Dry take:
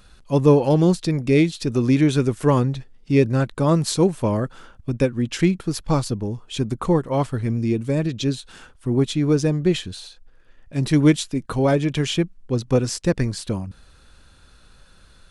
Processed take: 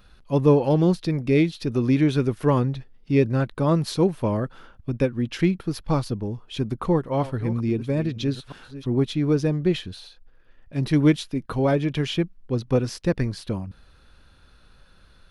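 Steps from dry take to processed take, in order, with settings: 6.55–8.89 reverse delay 0.658 s, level -13.5 dB; bell 7700 Hz -12.5 dB 0.73 oct; gain -2.5 dB

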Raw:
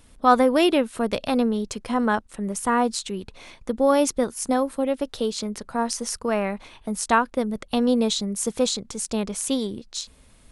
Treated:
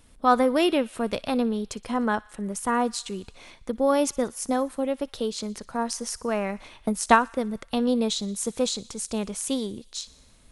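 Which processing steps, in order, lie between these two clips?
thin delay 60 ms, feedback 71%, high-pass 1400 Hz, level -21 dB; 6.49–7.28 transient shaper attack +8 dB, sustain +2 dB; gain -3 dB

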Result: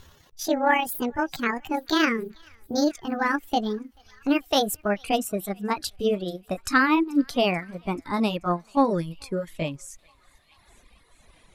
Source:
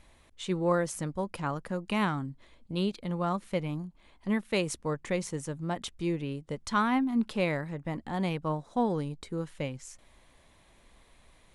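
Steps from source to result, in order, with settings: gliding pitch shift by +9 st ending unshifted; thinning echo 0.435 s, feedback 67%, high-pass 1100 Hz, level -18 dB; reverb removal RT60 1.8 s; gain +8.5 dB

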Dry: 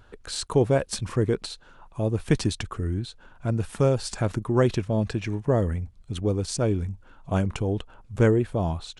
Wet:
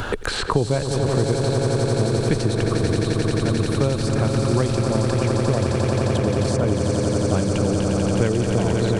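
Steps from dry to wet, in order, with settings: on a send: swelling echo 88 ms, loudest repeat 8, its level -8 dB; on the sum: three-band squash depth 100%

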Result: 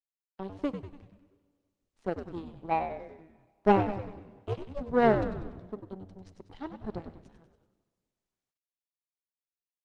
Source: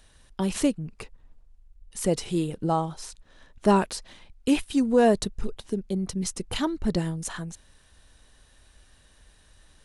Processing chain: gate -47 dBFS, range -35 dB; thirty-one-band EQ 160 Hz -5 dB, 400 Hz +4 dB, 800 Hz +9 dB, 1250 Hz -11 dB, 2500 Hz -9 dB; power-law curve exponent 2; 3.94–4.8 ring modulator 56 Hz -> 310 Hz; air absorption 210 m; frequency-shifting echo 96 ms, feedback 55%, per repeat -97 Hz, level -8 dB; Schroeder reverb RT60 1.7 s, combs from 28 ms, DRR 18 dB; Opus 32 kbps 48000 Hz

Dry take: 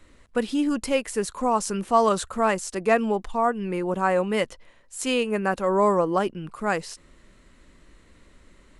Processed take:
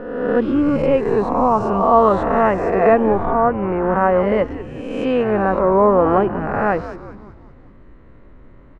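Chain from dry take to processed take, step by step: spectral swells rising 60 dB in 1.25 s; LPF 1200 Hz 12 dB/oct; frequency-shifting echo 0.192 s, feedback 53%, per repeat -140 Hz, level -13 dB; gain +6 dB

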